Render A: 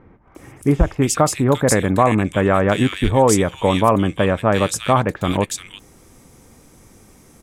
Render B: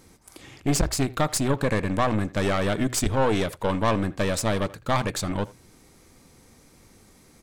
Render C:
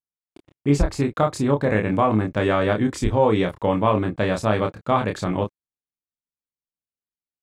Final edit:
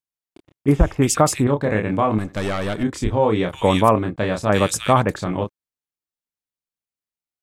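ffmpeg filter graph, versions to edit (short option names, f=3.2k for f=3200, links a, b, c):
-filter_complex "[0:a]asplit=3[a][b][c];[2:a]asplit=5[d][e][f][g][h];[d]atrim=end=0.682[i];[a]atrim=start=0.678:end=1.472[j];[e]atrim=start=1.468:end=2.182[k];[1:a]atrim=start=2.178:end=2.832[l];[f]atrim=start=2.828:end=3.532[m];[b]atrim=start=3.528:end=3.962[n];[g]atrim=start=3.958:end=4.492[o];[c]atrim=start=4.488:end=5.162[p];[h]atrim=start=5.158[q];[i][j]acrossfade=d=0.004:c1=hsin:c2=hsin[r];[r][k]acrossfade=d=0.004:c1=hsin:c2=hsin[s];[s][l]acrossfade=d=0.004:c1=hsin:c2=hsin[t];[t][m]acrossfade=d=0.004:c1=hsin:c2=hsin[u];[u][n]acrossfade=d=0.004:c1=hsin:c2=hsin[v];[v][o]acrossfade=d=0.004:c1=hsin:c2=hsin[w];[w][p]acrossfade=d=0.004:c1=hsin:c2=hsin[x];[x][q]acrossfade=d=0.004:c1=hsin:c2=hsin"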